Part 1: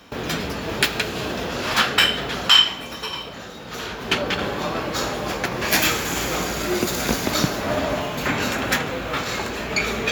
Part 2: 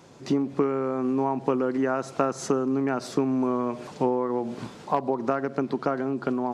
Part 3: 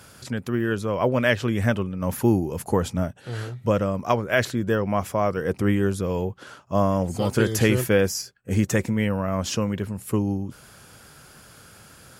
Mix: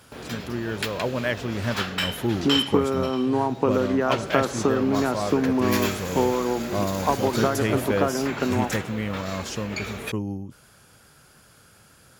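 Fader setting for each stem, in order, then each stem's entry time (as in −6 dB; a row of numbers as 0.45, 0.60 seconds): −10.0, +2.0, −5.5 decibels; 0.00, 2.15, 0.00 seconds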